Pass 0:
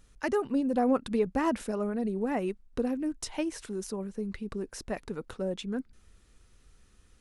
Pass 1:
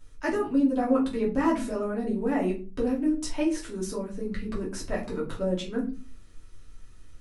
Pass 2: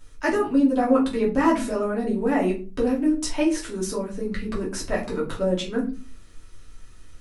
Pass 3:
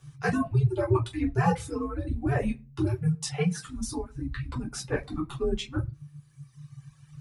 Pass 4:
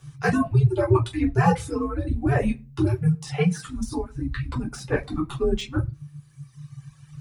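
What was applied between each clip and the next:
shoebox room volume 160 m³, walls furnished, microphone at 2.8 m; in parallel at -2.5 dB: vocal rider within 4 dB 0.5 s; on the sum: gain -8.5 dB
low shelf 380 Hz -4 dB; gain +6.5 dB
frequency shift -150 Hz; reverb removal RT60 2 s; gain -3.5 dB
de-esser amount 90%; gain +5 dB

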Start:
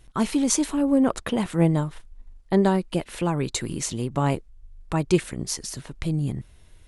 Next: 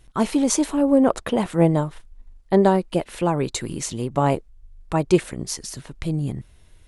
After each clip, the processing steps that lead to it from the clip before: dynamic EQ 620 Hz, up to +7 dB, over -34 dBFS, Q 0.79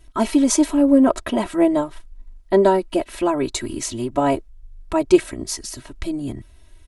comb 3.1 ms, depth 99%; gain -1 dB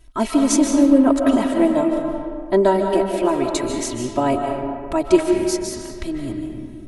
reverb RT60 2.2 s, pre-delay 0.11 s, DRR 2.5 dB; gain -1 dB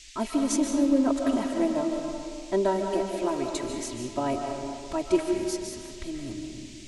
band noise 2000–7800 Hz -41 dBFS; gain -9 dB

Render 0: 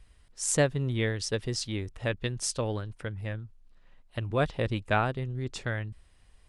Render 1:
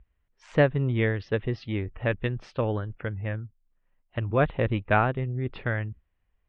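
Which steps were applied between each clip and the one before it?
spectral noise reduction 18 dB; LPF 2700 Hz 24 dB/oct; gain +4 dB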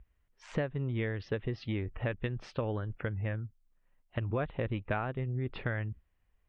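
compressor 6:1, threshold -30 dBFS, peak gain reduction 14.5 dB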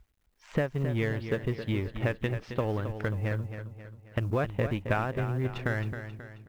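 G.711 law mismatch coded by A; feedback echo 0.268 s, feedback 46%, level -9.5 dB; gain +5.5 dB

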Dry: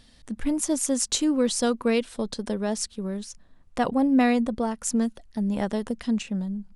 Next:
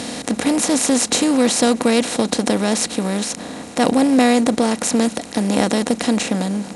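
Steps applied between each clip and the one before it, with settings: per-bin compression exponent 0.4; HPF 77 Hz 24 dB/oct; maximiser +4.5 dB; gain -1 dB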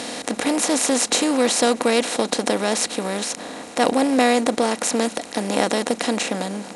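tone controls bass -12 dB, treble -2 dB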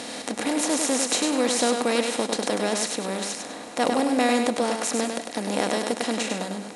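thinning echo 0.1 s, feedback 29%, high-pass 150 Hz, level -5 dB; gain -5 dB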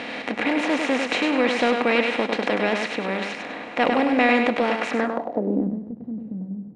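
in parallel at -11 dB: hard clip -18.5 dBFS, distortion -14 dB; on the sum: low-pass sweep 2400 Hz -> 150 Hz, 4.91–5.8

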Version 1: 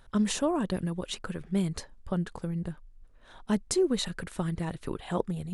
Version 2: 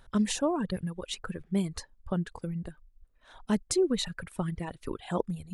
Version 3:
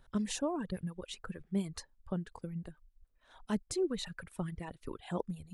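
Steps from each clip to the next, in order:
reverb removal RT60 1.7 s
harmonic tremolo 7 Hz, depth 50%, crossover 550 Hz; gain -4 dB

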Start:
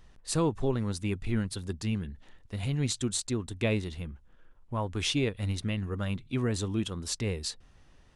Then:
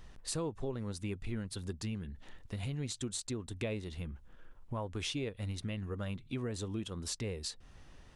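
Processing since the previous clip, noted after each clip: dynamic EQ 520 Hz, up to +4 dB, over -41 dBFS, Q 1.8; compressor 3:1, threshold -42 dBFS, peak gain reduction 15 dB; gain +3 dB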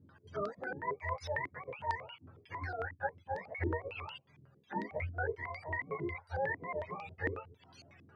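spectrum mirrored in octaves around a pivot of 450 Hz; chorus voices 6, 0.27 Hz, delay 13 ms, depth 2.1 ms; stepped low-pass 11 Hz 290–4600 Hz; gain +3 dB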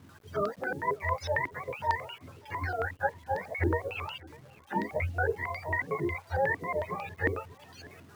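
bit-crush 11-bit; warbling echo 0.595 s, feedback 39%, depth 124 cents, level -23 dB; gain +7 dB

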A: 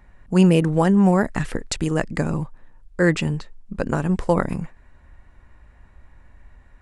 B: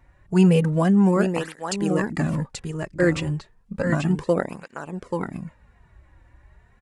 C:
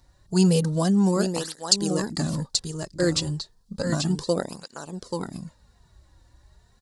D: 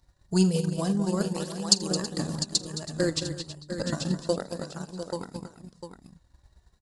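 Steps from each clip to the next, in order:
on a send: echo 0.834 s -5.5 dB; on the sum: tape flanging out of phase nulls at 0.32 Hz, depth 4.9 ms
resonant high shelf 3200 Hz +11 dB, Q 3; gain -3 dB
tapped delay 43/82/217/325/701 ms -13/-15.5/-8.5/-12.5/-9.5 dB; transient shaper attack +6 dB, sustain -6 dB; gain -6.5 dB

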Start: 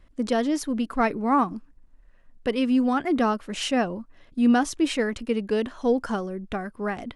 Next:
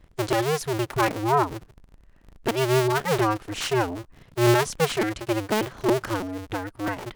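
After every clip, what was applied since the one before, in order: cycle switcher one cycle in 2, inverted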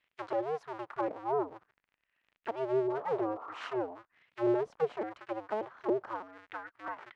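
high shelf 8400 Hz -11 dB; painted sound noise, 2.89–3.77, 230–1400 Hz -37 dBFS; auto-wah 460–2700 Hz, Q 2.1, down, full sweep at -18 dBFS; gain -4.5 dB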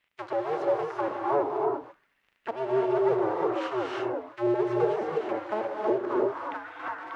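non-linear reverb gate 0.37 s rising, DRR -2 dB; gain +3 dB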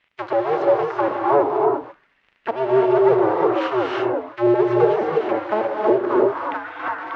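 LPF 4600 Hz 12 dB/oct; gain +9 dB

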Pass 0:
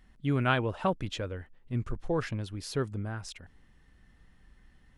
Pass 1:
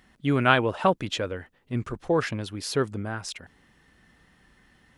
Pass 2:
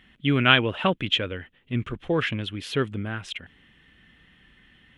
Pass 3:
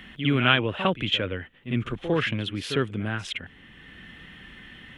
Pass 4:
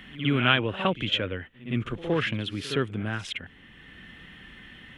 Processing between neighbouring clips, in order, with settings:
HPF 230 Hz 6 dB/oct; gain +8 dB
EQ curve 250 Hz 0 dB, 590 Hz -5 dB, 890 Hz -7 dB, 3200 Hz +9 dB, 4700 Hz -11 dB; gain +2 dB
pre-echo 55 ms -13 dB; three-band squash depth 40%
pre-echo 0.117 s -20 dB; gain -1.5 dB

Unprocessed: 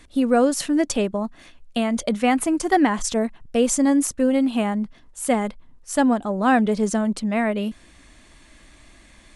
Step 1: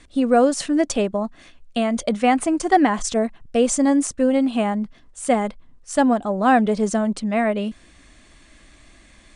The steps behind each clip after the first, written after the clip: steep low-pass 9900 Hz 96 dB/oct; notch 910 Hz, Q 13; dynamic EQ 730 Hz, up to +4 dB, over -31 dBFS, Q 1.3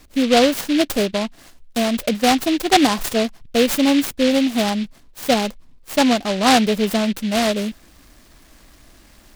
noise-modulated delay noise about 2800 Hz, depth 0.11 ms; gain +1.5 dB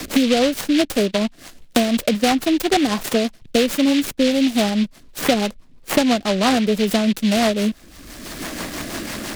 rotary speaker horn 6 Hz; sample leveller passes 1; three-band squash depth 100%; gain -2 dB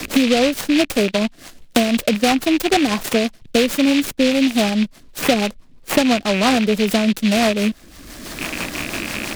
rattling part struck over -34 dBFS, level -14 dBFS; gain +1 dB

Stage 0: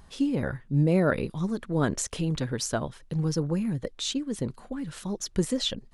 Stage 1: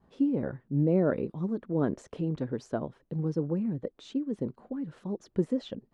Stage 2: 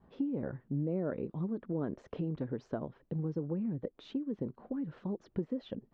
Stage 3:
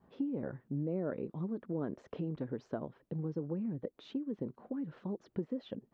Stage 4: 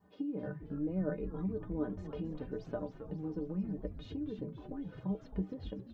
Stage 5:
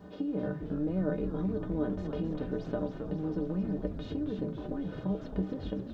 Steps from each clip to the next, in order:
expander -50 dBFS; band-pass 340 Hz, Q 0.77
compressor 3:1, threshold -35 dBFS, peak gain reduction 11 dB; air absorption 220 m; gain +1.5 dB
HPF 110 Hz 6 dB/oct; gain -1 dB
metallic resonator 90 Hz, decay 0.23 s, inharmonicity 0.03; frequency-shifting echo 0.268 s, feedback 60%, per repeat -140 Hz, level -9 dB; gain +7.5 dB
per-bin compression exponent 0.6; gain +2 dB

